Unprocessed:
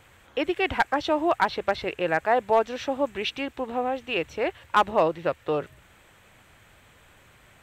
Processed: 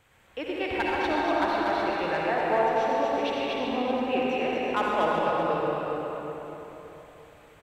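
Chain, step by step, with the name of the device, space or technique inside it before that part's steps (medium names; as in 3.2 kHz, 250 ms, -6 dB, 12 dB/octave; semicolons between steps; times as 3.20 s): 3.56–4.17 s: peaking EQ 190 Hz +10 dB 2.4 oct; delay 239 ms -3.5 dB; cave (delay 376 ms -10 dB; reverberation RT60 3.8 s, pre-delay 52 ms, DRR -4 dB); trim -8.5 dB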